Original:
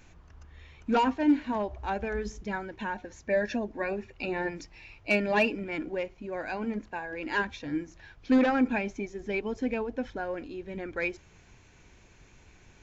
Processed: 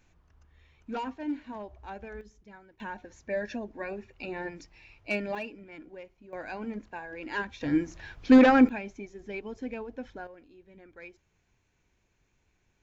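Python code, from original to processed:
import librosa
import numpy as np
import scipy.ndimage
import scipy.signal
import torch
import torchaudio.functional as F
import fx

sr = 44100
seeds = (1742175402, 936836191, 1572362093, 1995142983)

y = fx.gain(x, sr, db=fx.steps((0.0, -10.0), (2.21, -17.5), (2.8, -5.0), (5.35, -13.0), (6.33, -4.0), (7.61, 6.0), (8.69, -6.5), (10.27, -16.0)))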